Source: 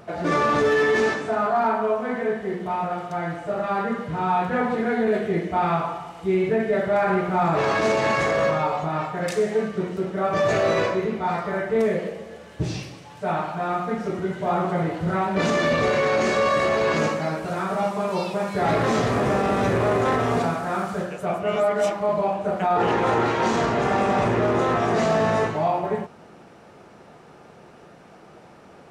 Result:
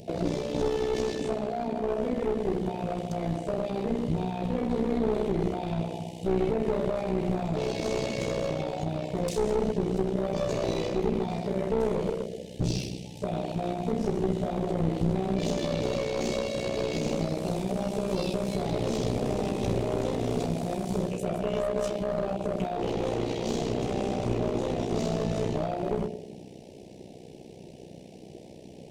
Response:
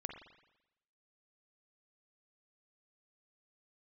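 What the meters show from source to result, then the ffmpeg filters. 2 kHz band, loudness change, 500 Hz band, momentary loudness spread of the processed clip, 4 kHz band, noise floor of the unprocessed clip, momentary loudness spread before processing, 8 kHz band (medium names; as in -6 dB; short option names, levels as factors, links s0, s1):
-16.0 dB, -6.5 dB, -6.5 dB, 8 LU, -4.5 dB, -48 dBFS, 7 LU, -3.0 dB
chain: -filter_complex "[0:a]asplit=2[s0][s1];[1:a]atrim=start_sample=2205[s2];[s1][s2]afir=irnorm=-1:irlink=0,volume=1.78[s3];[s0][s3]amix=inputs=2:normalize=0,alimiter=limit=0.237:level=0:latency=1:release=71,tremolo=f=62:d=0.75,asuperstop=centerf=1300:order=4:qfactor=0.51,aeval=exprs='clip(val(0),-1,0.0398)':c=same"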